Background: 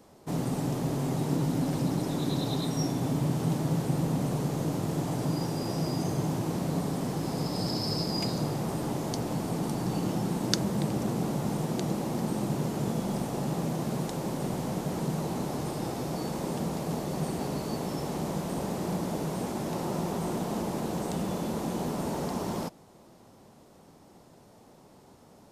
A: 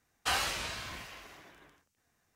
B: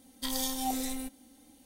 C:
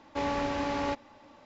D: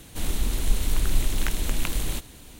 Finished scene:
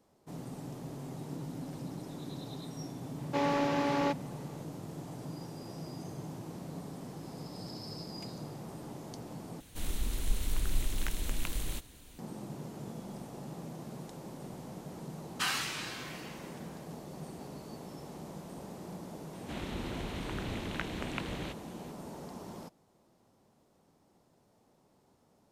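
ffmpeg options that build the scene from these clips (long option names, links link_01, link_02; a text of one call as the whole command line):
ffmpeg -i bed.wav -i cue0.wav -i cue1.wav -i cue2.wav -i cue3.wav -filter_complex "[4:a]asplit=2[link_01][link_02];[0:a]volume=-13dB[link_03];[3:a]lowshelf=frequency=190:width_type=q:width=1.5:gain=-13[link_04];[1:a]highpass=frequency=950:width=0.5412,highpass=frequency=950:width=1.3066[link_05];[link_02]highpass=110,lowpass=2800[link_06];[link_03]asplit=2[link_07][link_08];[link_07]atrim=end=9.604[link_09];[link_01]atrim=end=2.59,asetpts=PTS-STARTPTS,volume=-8.5dB[link_10];[link_08]atrim=start=12.186[link_11];[link_04]atrim=end=1.45,asetpts=PTS-STARTPTS,volume=-0.5dB,afade=type=in:duration=0.004:curve=hsin,afade=type=out:start_time=1.446:duration=0.004:curve=hsin,adelay=3180[link_12];[link_05]atrim=end=2.35,asetpts=PTS-STARTPTS,volume=-1dB,afade=type=in:duration=0.004:curve=hsin,afade=type=out:start_time=2.346:duration=0.004:curve=hsin,adelay=15140[link_13];[link_06]atrim=end=2.59,asetpts=PTS-STARTPTS,volume=-3.5dB,afade=type=in:duration=0.004:curve=hsin,afade=type=out:start_time=2.586:duration=0.004:curve=hsin,adelay=19330[link_14];[link_09][link_10]acrossfade=duration=0.004:curve1=hsin:curve2=hsin[link_15];[link_15][link_11]acrossfade=duration=0.004:curve1=hsin:curve2=hsin[link_16];[link_16][link_12][link_13][link_14]amix=inputs=4:normalize=0" out.wav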